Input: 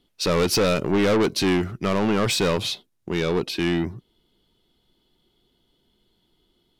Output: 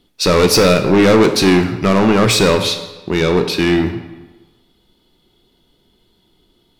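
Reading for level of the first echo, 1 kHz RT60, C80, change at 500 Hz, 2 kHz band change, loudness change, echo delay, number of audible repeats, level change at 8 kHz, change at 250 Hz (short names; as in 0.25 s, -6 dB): none, 1.2 s, 11.0 dB, +9.5 dB, +9.5 dB, +9.0 dB, none, none, +9.0 dB, +9.5 dB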